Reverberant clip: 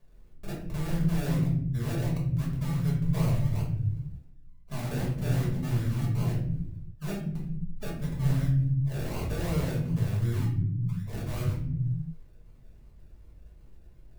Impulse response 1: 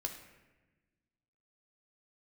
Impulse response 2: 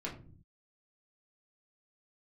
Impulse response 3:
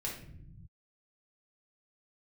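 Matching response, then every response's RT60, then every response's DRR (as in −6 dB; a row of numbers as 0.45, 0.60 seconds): 3; 1.2 s, 0.45 s, non-exponential decay; 3.5, −4.5, −4.0 decibels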